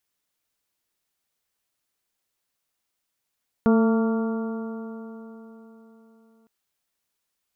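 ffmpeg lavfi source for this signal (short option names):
-f lavfi -i "aevalsrc='0.178*pow(10,-3*t/3.87)*sin(2*PI*223.26*t)+0.0944*pow(10,-3*t/3.87)*sin(2*PI*448.05*t)+0.0376*pow(10,-3*t/3.87)*sin(2*PI*675.89*t)+0.0282*pow(10,-3*t/3.87)*sin(2*PI*908.26*t)+0.0251*pow(10,-3*t/3.87)*sin(2*PI*1146.61*t)+0.0251*pow(10,-3*t/3.87)*sin(2*PI*1392.29*t)':d=2.81:s=44100"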